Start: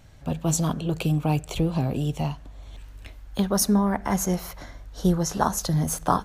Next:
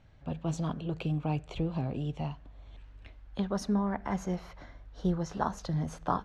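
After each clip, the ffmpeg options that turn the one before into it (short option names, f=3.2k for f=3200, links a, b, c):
-af "lowpass=3.5k,volume=-8dB"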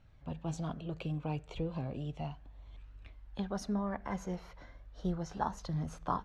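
-af "flanger=delay=0.7:depth=1.5:regen=68:speed=0.34:shape=triangular"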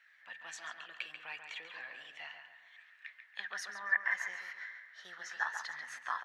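-filter_complex "[0:a]highpass=f=1.8k:t=q:w=15,asplit=2[a][b];[b]adelay=139,lowpass=f=3.1k:p=1,volume=-6dB,asplit=2[c][d];[d]adelay=139,lowpass=f=3.1k:p=1,volume=0.44,asplit=2[e][f];[f]adelay=139,lowpass=f=3.1k:p=1,volume=0.44,asplit=2[g][h];[h]adelay=139,lowpass=f=3.1k:p=1,volume=0.44,asplit=2[i][j];[j]adelay=139,lowpass=f=3.1k:p=1,volume=0.44[k];[c][e][g][i][k]amix=inputs=5:normalize=0[l];[a][l]amix=inputs=2:normalize=0,volume=2dB"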